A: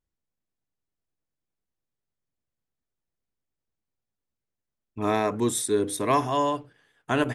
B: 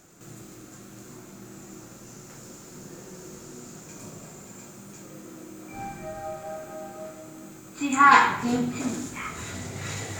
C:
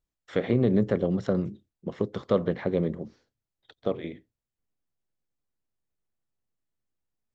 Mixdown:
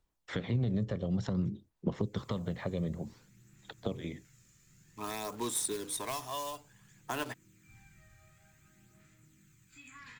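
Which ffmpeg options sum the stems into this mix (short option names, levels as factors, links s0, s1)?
-filter_complex "[0:a]highpass=f=620:p=1,acontrast=49,acrusher=bits=3:mode=log:mix=0:aa=0.000001,volume=0.299[s0];[1:a]firequalizer=gain_entry='entry(130,0);entry(230,-13);entry(680,-29);entry(1800,-2);entry(5000,-6)':delay=0.05:min_phase=1,asoftclip=type=tanh:threshold=0.133,acrossover=split=480|2600[s1][s2][s3];[s1]acompressor=threshold=0.00562:ratio=4[s4];[s2]acompressor=threshold=0.00501:ratio=4[s5];[s3]acompressor=threshold=0.00501:ratio=4[s6];[s4][s5][s6]amix=inputs=3:normalize=0,adelay=1950,volume=0.224[s7];[2:a]alimiter=limit=0.133:level=0:latency=1:release=386,volume=1.33[s8];[s0][s7][s8]amix=inputs=3:normalize=0,equalizer=f=940:w=3.2:g=5.5,acrossover=split=180|3000[s9][s10][s11];[s10]acompressor=threshold=0.0141:ratio=6[s12];[s9][s12][s11]amix=inputs=3:normalize=0,aphaser=in_gain=1:out_gain=1:delay=1.7:decay=0.36:speed=0.55:type=sinusoidal"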